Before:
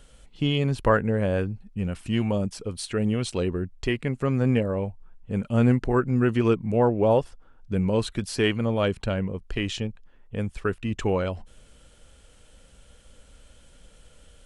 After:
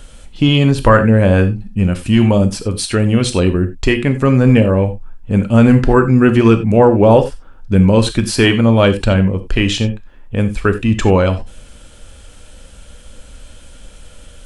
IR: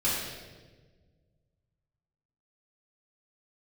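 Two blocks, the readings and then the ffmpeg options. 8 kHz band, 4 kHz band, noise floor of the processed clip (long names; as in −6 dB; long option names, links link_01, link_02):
+13.5 dB, +12.5 dB, −40 dBFS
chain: -filter_complex "[0:a]asplit=2[link_01][link_02];[1:a]atrim=start_sample=2205,atrim=end_sample=4410,highshelf=frequency=4400:gain=4[link_03];[link_02][link_03]afir=irnorm=-1:irlink=0,volume=-16.5dB[link_04];[link_01][link_04]amix=inputs=2:normalize=0,apsyclip=13dB,volume=-1.5dB"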